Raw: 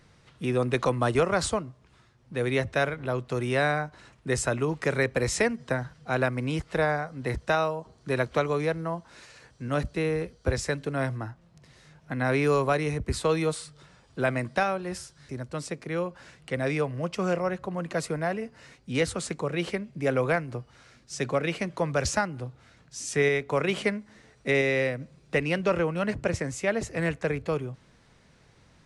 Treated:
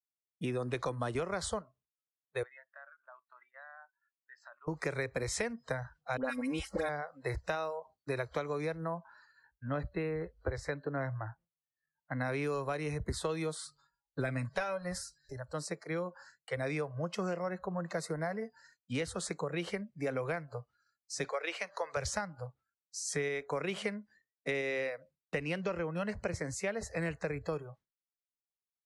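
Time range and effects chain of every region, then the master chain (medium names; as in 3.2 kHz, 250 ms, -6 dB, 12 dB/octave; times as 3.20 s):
2.43–4.68 s: high-pass 1.1 kHz + distance through air 320 m + compression 4:1, threshold -47 dBFS
6.17–6.89 s: treble shelf 9.6 kHz +10 dB + comb 3.7 ms, depth 68% + phase dispersion highs, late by 76 ms, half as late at 1.3 kHz
8.97–12.21 s: upward compressor, threshold -45 dBFS + tone controls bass 0 dB, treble -12 dB
13.58–15.33 s: bass shelf 61 Hz +11 dB + comb 7.2 ms, depth 64%
21.24–21.97 s: frequency weighting A + upward compressor, threshold -35 dBFS
whole clip: spectral noise reduction 24 dB; expander -49 dBFS; compression, threshold -29 dBFS; trim -2.5 dB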